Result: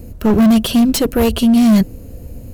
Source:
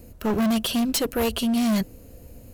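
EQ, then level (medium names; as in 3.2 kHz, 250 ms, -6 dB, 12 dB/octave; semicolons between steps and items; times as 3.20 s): bass shelf 410 Hz +9 dB; +5.0 dB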